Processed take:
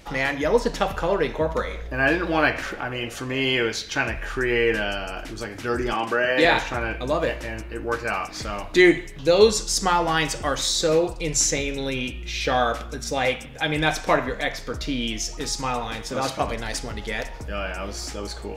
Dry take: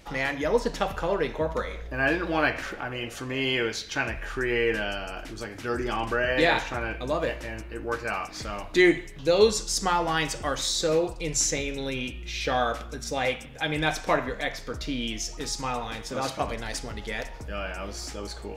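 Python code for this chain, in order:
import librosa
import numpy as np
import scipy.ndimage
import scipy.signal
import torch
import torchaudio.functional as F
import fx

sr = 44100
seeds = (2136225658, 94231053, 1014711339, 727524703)

y = fx.highpass(x, sr, hz=180.0, slope=12, at=(5.93, 6.45))
y = F.gain(torch.from_numpy(y), 4.0).numpy()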